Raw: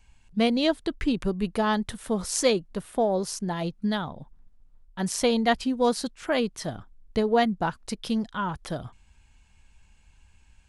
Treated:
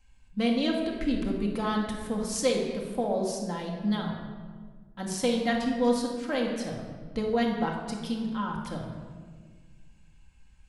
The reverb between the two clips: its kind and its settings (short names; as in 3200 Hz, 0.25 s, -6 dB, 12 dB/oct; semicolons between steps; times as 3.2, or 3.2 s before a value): shoebox room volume 1700 m³, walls mixed, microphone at 2.1 m; gain -7 dB